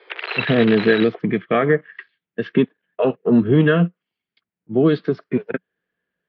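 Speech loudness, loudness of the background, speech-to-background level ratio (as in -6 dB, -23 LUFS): -19.0 LUFS, -26.5 LUFS, 7.5 dB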